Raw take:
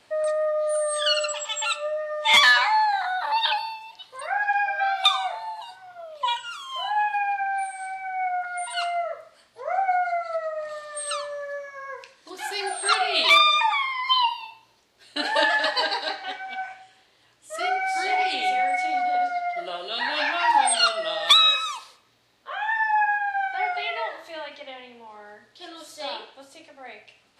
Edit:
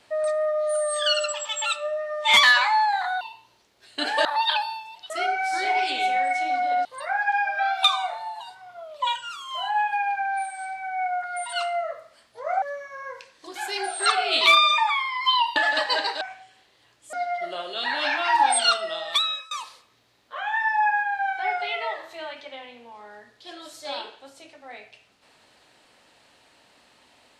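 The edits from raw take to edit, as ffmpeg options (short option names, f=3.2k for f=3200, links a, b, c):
-filter_complex "[0:a]asplit=10[a][b][c][d][e][f][g][h][i][j];[a]atrim=end=3.212[k];[b]atrim=start=14.388:end=15.432[l];[c]atrim=start=3.208:end=4.062[m];[d]atrim=start=17.528:end=19.282[n];[e]atrim=start=4.058:end=9.832[o];[f]atrim=start=11.448:end=14.392[p];[g]atrim=start=15.428:end=16.082[q];[h]atrim=start=16.608:end=17.532[r];[i]atrim=start=19.278:end=21.66,asetpts=PTS-STARTPTS,afade=t=out:st=1.562:d=0.82:silence=0.0630957[s];[j]atrim=start=21.66,asetpts=PTS-STARTPTS,afade=t=in:d=0.004:c=hsin:silence=0.0630957[t];[k][l]acrossfade=d=0.004:c1=hsin:c2=hsin[u];[u][m]acrossfade=d=0.004:c1=hsin:c2=hsin[v];[v][n]acrossfade=d=0.004:c1=hsin:c2=hsin[w];[w][o]acrossfade=d=0.004:c1=hsin:c2=hsin[x];[x][p]acrossfade=d=0.004:c1=hsin:c2=hsin[y];[y][q]acrossfade=d=0.004:c1=hsin:c2=hsin[z];[z][r]acrossfade=d=0.004:c1=hsin:c2=hsin[aa];[s][t]concat=n=2:v=0:a=1[ab];[aa][ab]acrossfade=d=0.004:c1=hsin:c2=hsin"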